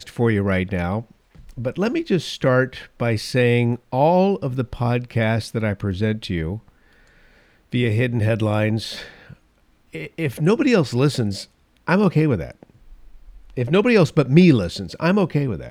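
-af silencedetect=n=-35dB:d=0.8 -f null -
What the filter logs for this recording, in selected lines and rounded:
silence_start: 6.58
silence_end: 7.73 | silence_duration: 1.14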